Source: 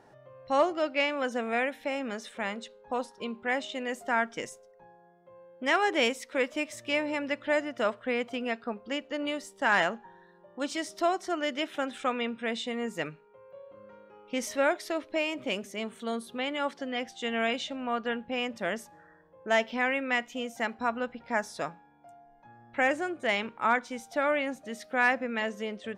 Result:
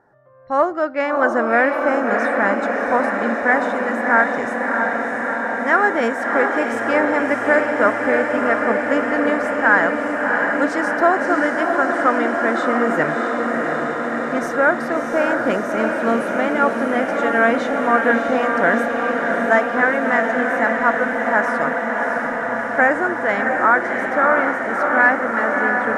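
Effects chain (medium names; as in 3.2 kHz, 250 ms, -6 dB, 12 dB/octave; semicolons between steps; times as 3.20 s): resonant high shelf 2.1 kHz -9.5 dB, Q 3; level rider gain up to 15.5 dB; on a send: echo that smears into a reverb 661 ms, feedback 80%, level -4 dB; on the sum: trim -2.5 dB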